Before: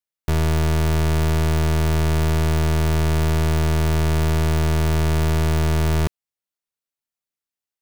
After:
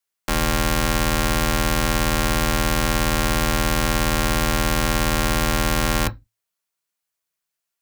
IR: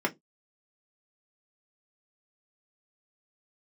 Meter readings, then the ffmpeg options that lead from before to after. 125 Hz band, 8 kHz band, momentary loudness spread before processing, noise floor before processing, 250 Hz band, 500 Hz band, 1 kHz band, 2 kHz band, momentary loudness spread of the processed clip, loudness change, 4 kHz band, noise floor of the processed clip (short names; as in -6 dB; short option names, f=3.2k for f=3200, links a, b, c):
-7.0 dB, +8.5 dB, 0 LU, under -85 dBFS, +0.5 dB, 0.0 dB, +5.5 dB, +7.0 dB, 0 LU, 0.0 dB, +7.5 dB, -83 dBFS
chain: -filter_complex "[0:a]tiltshelf=f=880:g=-5,asplit=2[a][b];[1:a]atrim=start_sample=2205,asetrate=33957,aresample=44100[c];[b][c]afir=irnorm=-1:irlink=0,volume=-13.5dB[d];[a][d]amix=inputs=2:normalize=0,afreqshift=-110,volume=2dB"